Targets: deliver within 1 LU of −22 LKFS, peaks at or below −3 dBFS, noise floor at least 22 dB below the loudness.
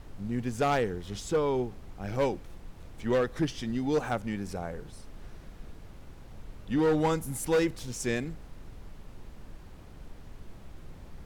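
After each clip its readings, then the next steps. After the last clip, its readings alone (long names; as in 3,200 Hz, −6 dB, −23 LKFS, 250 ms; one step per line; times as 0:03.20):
share of clipped samples 0.9%; peaks flattened at −20.5 dBFS; background noise floor −49 dBFS; target noise floor −53 dBFS; integrated loudness −30.5 LKFS; sample peak −20.5 dBFS; target loudness −22.0 LKFS
→ clipped peaks rebuilt −20.5 dBFS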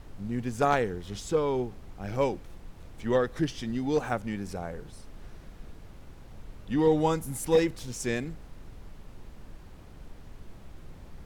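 share of clipped samples 0.0%; background noise floor −49 dBFS; target noise floor −52 dBFS
→ noise reduction from a noise print 6 dB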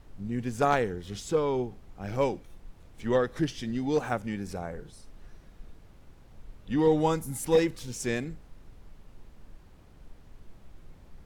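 background noise floor −54 dBFS; integrated loudness −29.0 LKFS; sample peak −11.5 dBFS; target loudness −22.0 LKFS
→ level +7 dB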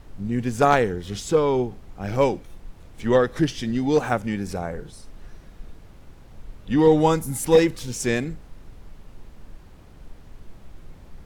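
integrated loudness −22.0 LKFS; sample peak −4.5 dBFS; background noise floor −47 dBFS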